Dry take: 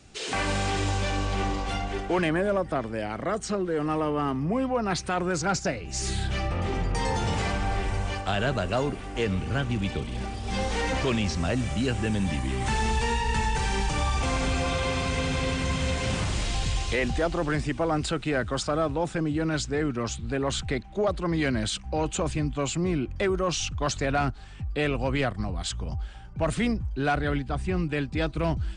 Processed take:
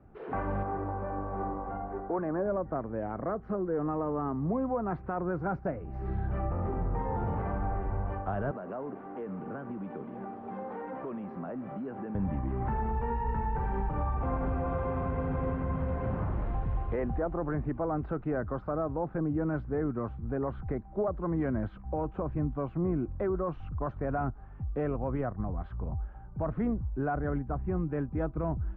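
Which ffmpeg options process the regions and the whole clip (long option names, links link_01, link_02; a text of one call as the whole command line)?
ffmpeg -i in.wav -filter_complex "[0:a]asettb=1/sr,asplit=3[link_01][link_02][link_03];[link_01]atrim=end=0.634[link_04];[link_02]atrim=start=0.63:end=2.46,asetpts=PTS-STARTPTS,afade=type=in:duration=0.004:curve=qsin,afade=type=out:start_time=1.826:duration=0.004:curve=qsin,lowpass=1500,lowshelf=frequency=180:gain=-10[link_05];[link_03]atrim=start=2.456[link_06];[link_04][link_05]acrossfade=duration=0.004:curve1=hsin:curve2=qsin[link_07];[link_07][link_06]acrossfade=duration=0.004:curve1=qsin:curve2=hsin,asettb=1/sr,asplit=3[link_08][link_09][link_10];[link_08]atrim=end=8.514[link_11];[link_09]atrim=start=8.51:end=12.15,asetpts=PTS-STARTPTS,afade=type=in:duration=0.004:curve=qsin,afade=type=out:start_time=3.636:duration=0.004:curve=qsin,highpass=frequency=180:width=0.5412,highpass=frequency=180:width=1.3066,acompressor=threshold=-31dB:ratio=6:attack=3.2:release=140:knee=1:detection=peak,acrusher=bits=6:mix=0:aa=0.5[link_12];[link_10]atrim=start=12.146[link_13];[link_11][link_12]acrossfade=duration=0.004:curve1=hsin:curve2=qsin[link_14];[link_14][link_13]acrossfade=duration=0.004:curve1=qsin:curve2=hsin,lowpass=frequency=1300:width=0.5412,lowpass=frequency=1300:width=1.3066,alimiter=limit=-20dB:level=0:latency=1:release=221,volume=-2.5dB" out.wav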